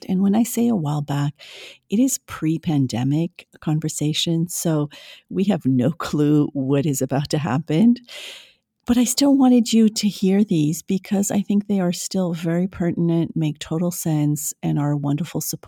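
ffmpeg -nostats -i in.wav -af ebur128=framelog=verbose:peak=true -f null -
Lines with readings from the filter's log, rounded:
Integrated loudness:
  I:         -20.5 LUFS
  Threshold: -30.8 LUFS
Loudness range:
  LRA:         4.1 LU
  Threshold: -40.7 LUFS
  LRA low:   -22.5 LUFS
  LRA high:  -18.4 LUFS
True peak:
  Peak:       -4.7 dBFS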